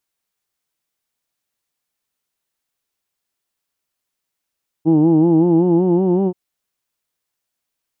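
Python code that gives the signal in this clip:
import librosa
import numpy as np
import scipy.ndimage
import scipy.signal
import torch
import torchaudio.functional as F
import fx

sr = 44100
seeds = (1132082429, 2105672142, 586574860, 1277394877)

y = fx.formant_vowel(sr, seeds[0], length_s=1.48, hz=155.0, glide_st=3.5, vibrato_hz=5.3, vibrato_st=0.9, f1_hz=320.0, f2_hz=850.0, f3_hz=2900.0)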